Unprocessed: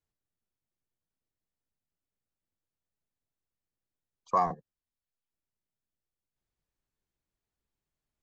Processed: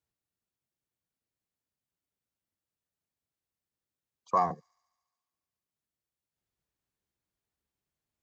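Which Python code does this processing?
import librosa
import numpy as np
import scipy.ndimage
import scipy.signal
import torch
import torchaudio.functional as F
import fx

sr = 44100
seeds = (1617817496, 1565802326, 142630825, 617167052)

p1 = scipy.signal.sosfilt(scipy.signal.butter(2, 58.0, 'highpass', fs=sr, output='sos'), x)
y = p1 + fx.echo_wet_highpass(p1, sr, ms=71, feedback_pct=76, hz=5300.0, wet_db=-17.0, dry=0)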